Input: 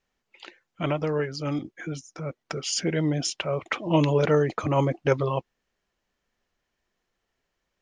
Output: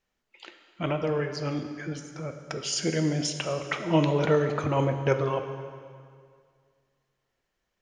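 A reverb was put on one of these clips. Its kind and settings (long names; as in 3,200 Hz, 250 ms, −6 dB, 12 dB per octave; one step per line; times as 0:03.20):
dense smooth reverb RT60 2.1 s, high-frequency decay 0.9×, DRR 6 dB
level −2 dB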